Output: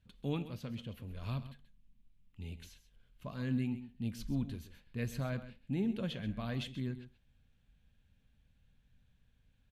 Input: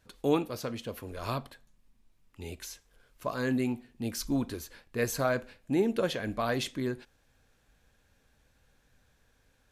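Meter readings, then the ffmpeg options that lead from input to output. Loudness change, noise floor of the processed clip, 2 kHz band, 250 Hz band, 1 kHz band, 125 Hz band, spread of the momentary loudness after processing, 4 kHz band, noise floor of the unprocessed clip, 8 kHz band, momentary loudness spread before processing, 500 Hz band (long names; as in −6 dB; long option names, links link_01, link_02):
−7.0 dB, −71 dBFS, −11.5 dB, −5.5 dB, −14.5 dB, 0.0 dB, 13 LU, −8.5 dB, −69 dBFS, −17.0 dB, 13 LU, −14.0 dB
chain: -filter_complex "[0:a]firequalizer=gain_entry='entry(200,0);entry(330,-14);entry(1300,-15);entry(3000,-5);entry(5300,-17)':delay=0.05:min_phase=1,asplit=2[link_01][link_02];[link_02]aecho=0:1:132:0.211[link_03];[link_01][link_03]amix=inputs=2:normalize=0"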